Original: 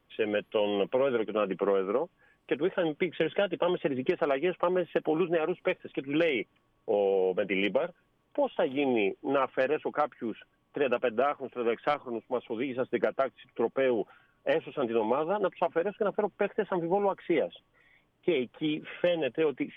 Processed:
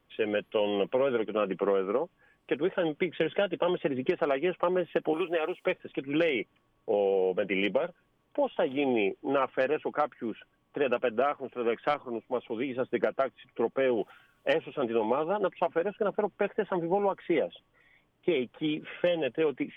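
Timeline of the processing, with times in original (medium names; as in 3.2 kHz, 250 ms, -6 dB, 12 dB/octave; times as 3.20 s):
5.13–5.66 s: tone controls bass -14 dB, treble +15 dB
13.97–14.53 s: treble shelf 2.7 kHz +10.5 dB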